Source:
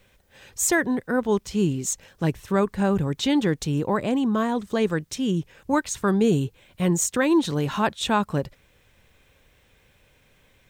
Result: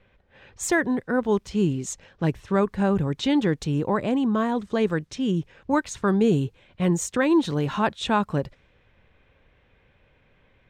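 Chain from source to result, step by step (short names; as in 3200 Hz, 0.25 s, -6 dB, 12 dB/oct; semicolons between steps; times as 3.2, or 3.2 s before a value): low-pass opened by the level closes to 2800 Hz, open at -21 dBFS; high shelf 6600 Hz -11.5 dB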